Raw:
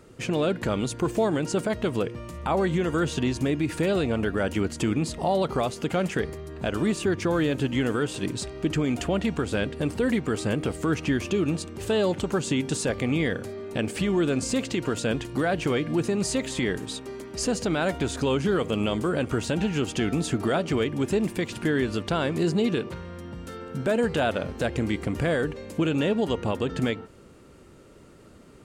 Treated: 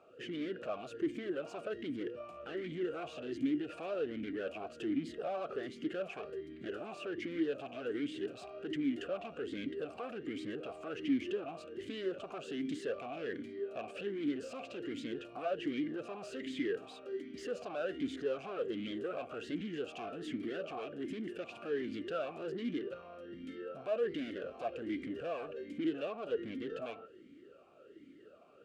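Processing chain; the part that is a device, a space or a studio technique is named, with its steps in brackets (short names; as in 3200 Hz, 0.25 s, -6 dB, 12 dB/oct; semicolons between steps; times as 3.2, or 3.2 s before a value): talk box (tube stage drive 30 dB, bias 0.4; vowel sweep a-i 1.3 Hz); gain +5.5 dB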